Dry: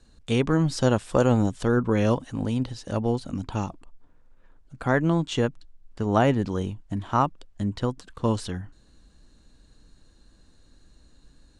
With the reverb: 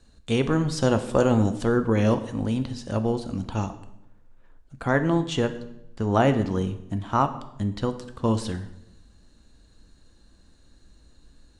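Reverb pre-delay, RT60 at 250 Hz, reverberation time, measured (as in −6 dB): 5 ms, 1.0 s, 0.85 s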